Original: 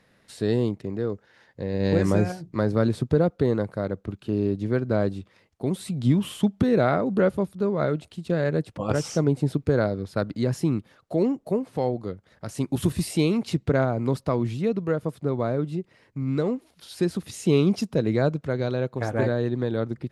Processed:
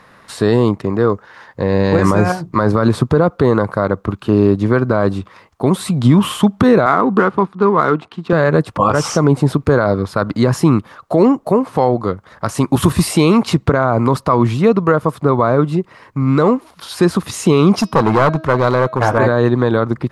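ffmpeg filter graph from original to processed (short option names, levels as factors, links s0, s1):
-filter_complex "[0:a]asettb=1/sr,asplit=3[s0][s1][s2];[s0]atrim=end=6.864[s3];[s1]atrim=start=6.86:end=8.33,asetpts=PTS-STARTPTS,afade=t=in:d=0.004:c=qsin,afade=t=out:st=1.466:d=0.004:c=qsin,highpass=200,equalizer=f=580:w=6.4:g=-14,adynamicsmooth=sensitivity=7:basefreq=2700[s4];[s2]atrim=start=8.326[s5];[s3][s4]acrossfade=d=0.004:c1=hsin:c2=qsin[s6];[s6][s5]acrossfade=d=0.004:c1=qsin:c2=hsin,asettb=1/sr,asplit=3[s7][s8][s9];[s7]atrim=end=17.724[s10];[s8]atrim=start=17.72:end=19.18,asetpts=PTS-STARTPTS,afade=t=in:d=0.004:c=qsin,afade=t=out:st=1.456:d=0.004:c=qsin,bandreject=f=7600:w=16,bandreject=f=319.1:t=h:w=4,bandreject=f=638.2:t=h:w=4,bandreject=f=957.3:t=h:w=4,bandreject=f=1276.4:t=h:w=4,bandreject=f=1595.5:t=h:w=4,bandreject=f=1914.6:t=h:w=4,bandreject=f=2233.7:t=h:w=4,bandreject=f=2552.8:t=h:w=4,bandreject=f=2871.9:t=h:w=4,bandreject=f=3191:t=h:w=4,bandreject=f=3510.1:t=h:w=4,bandreject=f=3829.2:t=h:w=4,bandreject=f=4148.3:t=h:w=4,bandreject=f=4467.4:t=h:w=4,bandreject=f=4786.5:t=h:w=4,bandreject=f=5105.6:t=h:w=4,bandreject=f=5424.7:t=h:w=4,bandreject=f=5743.8:t=h:w=4,bandreject=f=6062.9:t=h:w=4,asoftclip=type=hard:threshold=0.075[s11];[s9]atrim=start=19.176[s12];[s10][s11]acrossfade=d=0.004:c1=hsin:c2=qsin[s13];[s13][s12]acrossfade=d=0.004:c1=qsin:c2=hsin,equalizer=f=1100:w=1.6:g=14,alimiter=level_in=4.47:limit=0.891:release=50:level=0:latency=1,volume=0.891"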